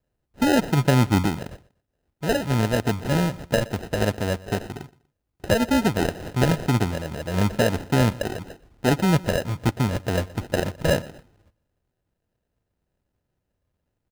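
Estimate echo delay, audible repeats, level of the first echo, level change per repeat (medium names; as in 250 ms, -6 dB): 121 ms, 2, -21.0 dB, -11.0 dB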